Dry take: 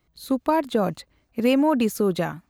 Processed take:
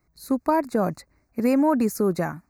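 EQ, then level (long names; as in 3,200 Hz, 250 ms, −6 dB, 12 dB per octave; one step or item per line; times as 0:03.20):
Butterworth band-reject 3,200 Hz, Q 1.4
parametric band 490 Hz −3.5 dB 0.24 octaves
0.0 dB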